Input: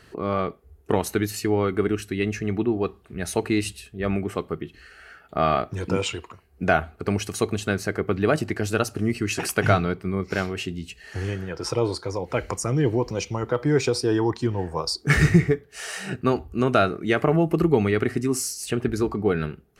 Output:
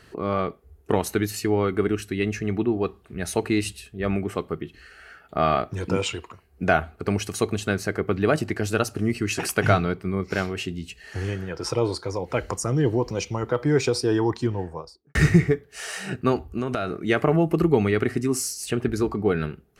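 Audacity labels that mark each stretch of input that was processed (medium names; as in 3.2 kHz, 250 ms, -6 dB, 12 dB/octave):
12.400000	13.050000	peaking EQ 2.3 kHz -9 dB 0.21 oct
14.380000	15.150000	studio fade out
16.500000	16.990000	compression 12:1, threshold -21 dBFS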